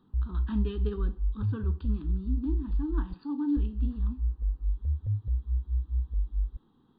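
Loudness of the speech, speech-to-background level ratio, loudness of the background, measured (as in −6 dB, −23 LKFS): −36.0 LKFS, −3.5 dB, −32.5 LKFS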